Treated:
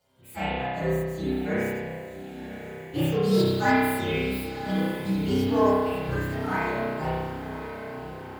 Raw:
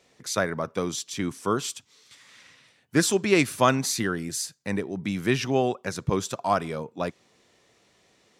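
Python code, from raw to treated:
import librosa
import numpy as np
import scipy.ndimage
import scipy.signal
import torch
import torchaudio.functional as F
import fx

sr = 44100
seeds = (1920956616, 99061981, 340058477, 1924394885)

p1 = fx.partial_stretch(x, sr, pct=128)
p2 = fx.high_shelf(p1, sr, hz=4100.0, db=5.5, at=(3.22, 4.44))
p3 = 10.0 ** (-22.0 / 20.0) * (np.abs((p2 / 10.0 ** (-22.0 / 20.0) + 3.0) % 4.0 - 2.0) - 1.0)
p4 = p2 + (p3 * librosa.db_to_amplitude(-9.5))
p5 = fx.rev_spring(p4, sr, rt60_s=1.4, pass_ms=(31,), chirp_ms=65, drr_db=-9.0)
p6 = fx.hpss(p5, sr, part='percussive', gain_db=-9)
p7 = fx.echo_diffused(p6, sr, ms=1075, feedback_pct=59, wet_db=-11.0)
y = p7 * librosa.db_to_amplitude(-6.5)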